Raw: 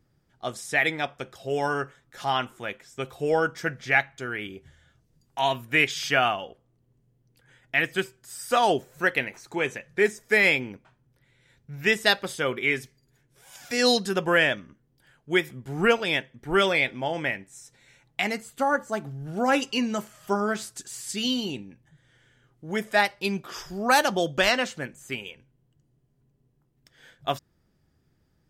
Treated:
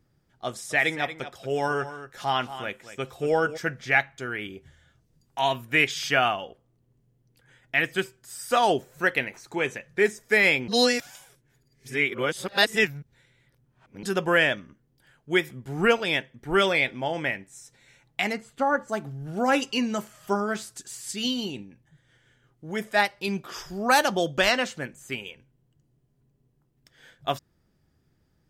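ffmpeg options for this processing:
ffmpeg -i in.wav -filter_complex "[0:a]asplit=3[link_01][link_02][link_03];[link_01]afade=type=out:start_time=0.7:duration=0.02[link_04];[link_02]aecho=1:1:232:0.237,afade=type=in:start_time=0.7:duration=0.02,afade=type=out:start_time=3.56:duration=0.02[link_05];[link_03]afade=type=in:start_time=3.56:duration=0.02[link_06];[link_04][link_05][link_06]amix=inputs=3:normalize=0,asplit=3[link_07][link_08][link_09];[link_07]afade=type=out:start_time=18.32:duration=0.02[link_10];[link_08]aemphasis=mode=reproduction:type=50fm,afade=type=in:start_time=18.32:duration=0.02,afade=type=out:start_time=18.87:duration=0.02[link_11];[link_09]afade=type=in:start_time=18.87:duration=0.02[link_12];[link_10][link_11][link_12]amix=inputs=3:normalize=0,asettb=1/sr,asplit=3[link_13][link_14][link_15];[link_13]atrim=end=20.384[link_16];[link_14]atrim=start=20.38:end=23.28,asetpts=PTS-STARTPTS,afade=type=in:duration=0.004:curve=qsin,afade=type=out:start_time=2.896:duration=0.004:curve=qsin,tremolo=f=5.7:d=0.28[link_17];[link_15]atrim=start=23.276[link_18];[link_16][link_17]acrossfade=duration=0.004:curve1=hsin:curve2=qsin[link_19];[link_19][link_18]acrossfade=duration=0.004:curve1=qsin:curve2=hsin,asplit=3[link_20][link_21][link_22];[link_20]atrim=end=10.682[link_23];[link_21]atrim=start=10.678:end=14.032,asetpts=PTS-STARTPTS,areverse[link_24];[link_22]atrim=start=14.028[link_25];[link_23][link_24]acrossfade=duration=0.004:curve1=hsin:curve2=hsin[link_26];[link_26][link_25]acrossfade=duration=0.004:curve1=hsin:curve2=hsin" out.wav

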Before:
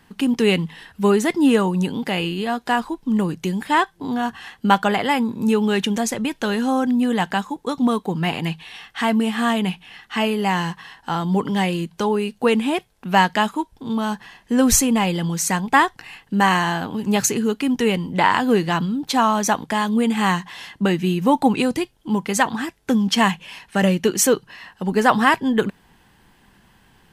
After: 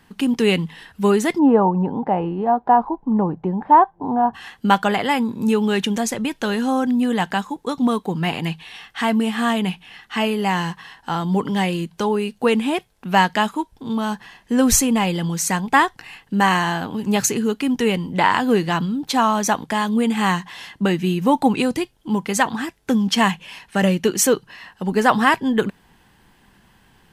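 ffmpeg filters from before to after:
ffmpeg -i in.wav -filter_complex "[0:a]asplit=3[link_01][link_02][link_03];[link_01]afade=type=out:start_time=1.38:duration=0.02[link_04];[link_02]lowpass=frequency=840:width_type=q:width=3.4,afade=type=in:start_time=1.38:duration=0.02,afade=type=out:start_time=4.33:duration=0.02[link_05];[link_03]afade=type=in:start_time=4.33:duration=0.02[link_06];[link_04][link_05][link_06]amix=inputs=3:normalize=0" out.wav

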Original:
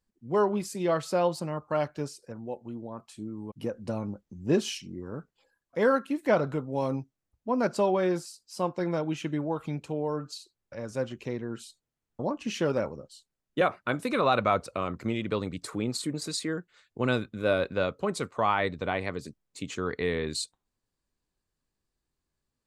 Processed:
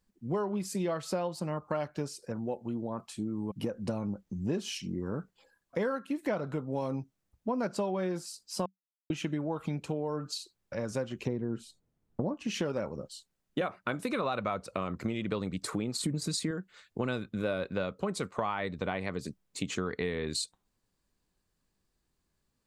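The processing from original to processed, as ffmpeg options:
ffmpeg -i in.wav -filter_complex "[0:a]asettb=1/sr,asplit=3[link_01][link_02][link_03];[link_01]atrim=end=11.274[link_04];[link_02]atrim=start=11.27:end=12.34,asetpts=PTS-STARTPTS,afade=type=in:duration=0.004:curve=qsin,afade=type=out:start_time=1.066:duration=0.004:curve=qsin,tiltshelf=frequency=970:gain=7.5[link_05];[link_03]atrim=start=12.336[link_06];[link_04][link_05]acrossfade=duration=0.004:curve1=hsin:curve2=qsin[link_07];[link_07][link_06]acrossfade=duration=0.004:curve1=qsin:curve2=hsin,asettb=1/sr,asplit=3[link_08][link_09][link_10];[link_08]atrim=end=16.014[link_11];[link_09]atrim=start=16.01:end=16.51,asetpts=PTS-STARTPTS,afade=type=in:duration=0.004:curve=qsin,afade=type=out:start_time=0.496:duration=0.004:curve=qsin,bass=frequency=250:gain=11,treble=frequency=4000:gain=3[link_12];[link_10]atrim=start=16.506[link_13];[link_11][link_12]acrossfade=duration=0.004:curve1=hsin:curve2=qsin[link_14];[link_14][link_13]acrossfade=duration=0.004:curve1=qsin:curve2=hsin,asplit=3[link_15][link_16][link_17];[link_15]atrim=end=8.66,asetpts=PTS-STARTPTS,afade=type=out:start_time=8.656:duration=0.004:curve=hsin[link_18];[link_16]atrim=start=8.66:end=9.1,asetpts=PTS-STARTPTS,volume=0[link_19];[link_17]atrim=start=9.1,asetpts=PTS-STARTPTS,afade=type=in:duration=0.004:curve=hsin[link_20];[link_18][link_19][link_20]concat=n=3:v=0:a=1,equalizer=frequency=190:width=6.9:gain=6,acompressor=threshold=-34dB:ratio=6,volume=4.5dB" out.wav

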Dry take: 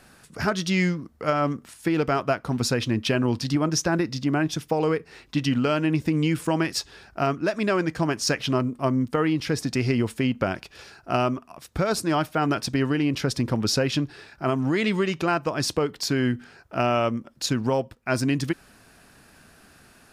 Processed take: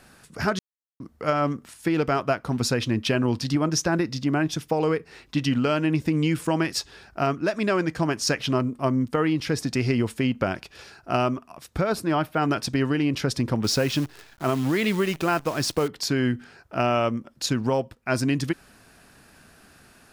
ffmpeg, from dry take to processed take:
ffmpeg -i in.wav -filter_complex "[0:a]asettb=1/sr,asplit=3[link_01][link_02][link_03];[link_01]atrim=end=11.814[link_04];[link_02]atrim=start=11.81:end=12.36,asetpts=PTS-STARTPTS,afade=type=in:duration=0.004:curve=qsin,afade=type=out:start_time=0.546:duration=0.004:curve=qsin,equalizer=frequency=6800:width=0.81:gain=-9[link_05];[link_03]atrim=start=12.356[link_06];[link_04][link_05]acrossfade=duration=0.004:curve1=hsin:curve2=qsin[link_07];[link_07][link_06]acrossfade=duration=0.004:curve1=qsin:curve2=hsin,asettb=1/sr,asplit=3[link_08][link_09][link_10];[link_08]atrim=end=13.644[link_11];[link_09]atrim=start=13.64:end=15.88,asetpts=PTS-STARTPTS,afade=type=in:duration=0.004:curve=qsin,afade=type=out:start_time=2.236:duration=0.004:curve=qsin,acrusher=bits=7:dc=4:mix=0:aa=0.000001[link_12];[link_10]atrim=start=15.876[link_13];[link_11][link_12]acrossfade=duration=0.004:curve1=hsin:curve2=qsin[link_14];[link_14][link_13]acrossfade=duration=0.004:curve1=qsin:curve2=hsin,asplit=3[link_15][link_16][link_17];[link_15]atrim=end=0.59,asetpts=PTS-STARTPTS,afade=type=out:start_time=0.586:duration=0.004:curve=hsin[link_18];[link_16]atrim=start=0.59:end=1,asetpts=PTS-STARTPTS,volume=0[link_19];[link_17]atrim=start=1,asetpts=PTS-STARTPTS,afade=type=in:duration=0.004:curve=hsin[link_20];[link_18][link_19][link_20]concat=n=3:v=0:a=1" out.wav

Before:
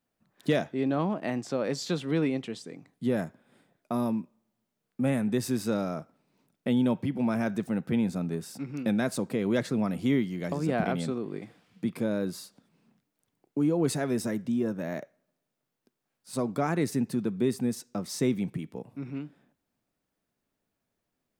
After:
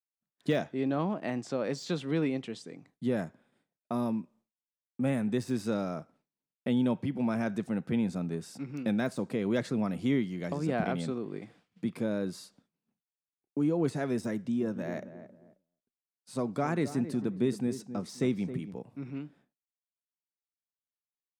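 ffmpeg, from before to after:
ffmpeg -i in.wav -filter_complex "[0:a]asettb=1/sr,asplit=3[link_01][link_02][link_03];[link_01]atrim=end=14.344[link_04];[link_02]atrim=start=14.34:end=18.74,asetpts=PTS-STARTPTS,afade=type=in:duration=0.004:curve=qsin,afade=type=out:start_time=4.396:duration=0.004:curve=qsin,asplit=2[link_05][link_06];[link_06]adelay=268,lowpass=frequency=1100:poles=1,volume=-11dB,asplit=2[link_07][link_08];[link_08]adelay=268,lowpass=frequency=1100:poles=1,volume=0.31,asplit=2[link_09][link_10];[link_10]adelay=268,lowpass=frequency=1100:poles=1,volume=0.31[link_11];[link_05][link_07][link_09][link_11]amix=inputs=4:normalize=0,atrim=end_sample=194040[link_12];[link_03]atrim=start=18.736[link_13];[link_04][link_12]acrossfade=duration=0.004:curve1=hsin:curve2=qsin[link_14];[link_14][link_13]acrossfade=duration=0.004:curve1=qsin:curve2=hsin,lowpass=10000,agate=range=-33dB:threshold=-54dB:ratio=3:detection=peak,deesser=0.95,volume=-2.5dB" out.wav

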